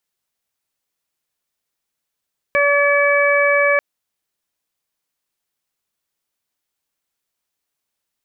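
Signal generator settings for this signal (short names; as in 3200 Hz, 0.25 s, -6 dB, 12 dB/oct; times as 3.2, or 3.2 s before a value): steady additive tone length 1.24 s, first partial 572 Hz, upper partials -6/-3/-2 dB, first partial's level -15.5 dB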